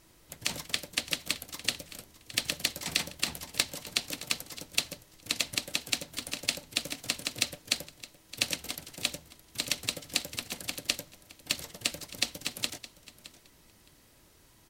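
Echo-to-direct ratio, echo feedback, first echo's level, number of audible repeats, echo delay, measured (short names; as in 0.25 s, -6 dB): -17.0 dB, 16%, -17.0 dB, 2, 0.616 s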